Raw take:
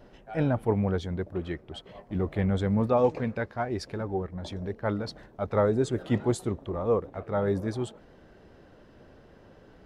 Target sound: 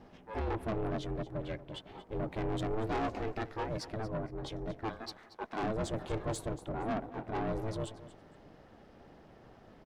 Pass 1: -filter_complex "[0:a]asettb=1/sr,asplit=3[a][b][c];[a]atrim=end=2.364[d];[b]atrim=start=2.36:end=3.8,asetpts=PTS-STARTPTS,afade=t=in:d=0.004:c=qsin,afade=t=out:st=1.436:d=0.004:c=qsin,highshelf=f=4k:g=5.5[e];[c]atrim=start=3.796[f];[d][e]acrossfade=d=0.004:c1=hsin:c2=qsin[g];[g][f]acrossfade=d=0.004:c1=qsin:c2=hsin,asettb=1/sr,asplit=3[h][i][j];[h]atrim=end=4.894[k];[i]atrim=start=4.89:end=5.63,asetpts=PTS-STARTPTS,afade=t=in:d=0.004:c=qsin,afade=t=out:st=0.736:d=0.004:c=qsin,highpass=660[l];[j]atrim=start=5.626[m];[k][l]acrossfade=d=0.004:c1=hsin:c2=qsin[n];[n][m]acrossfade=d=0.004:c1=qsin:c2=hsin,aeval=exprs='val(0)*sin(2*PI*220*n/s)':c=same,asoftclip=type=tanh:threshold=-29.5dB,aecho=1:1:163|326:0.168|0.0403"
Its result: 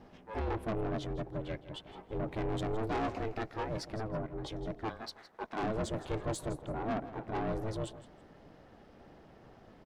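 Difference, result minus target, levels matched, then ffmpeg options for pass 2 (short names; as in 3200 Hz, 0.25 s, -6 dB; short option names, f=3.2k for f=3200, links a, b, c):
echo 69 ms early
-filter_complex "[0:a]asettb=1/sr,asplit=3[a][b][c];[a]atrim=end=2.364[d];[b]atrim=start=2.36:end=3.8,asetpts=PTS-STARTPTS,afade=t=in:d=0.004:c=qsin,afade=t=out:st=1.436:d=0.004:c=qsin,highshelf=f=4k:g=5.5[e];[c]atrim=start=3.796[f];[d][e]acrossfade=d=0.004:c1=hsin:c2=qsin[g];[g][f]acrossfade=d=0.004:c1=qsin:c2=hsin,asettb=1/sr,asplit=3[h][i][j];[h]atrim=end=4.894[k];[i]atrim=start=4.89:end=5.63,asetpts=PTS-STARTPTS,afade=t=in:d=0.004:c=qsin,afade=t=out:st=0.736:d=0.004:c=qsin,highpass=660[l];[j]atrim=start=5.626[m];[k][l]acrossfade=d=0.004:c1=hsin:c2=qsin[n];[n][m]acrossfade=d=0.004:c1=qsin:c2=hsin,aeval=exprs='val(0)*sin(2*PI*220*n/s)':c=same,asoftclip=type=tanh:threshold=-29.5dB,aecho=1:1:232|464:0.168|0.0403"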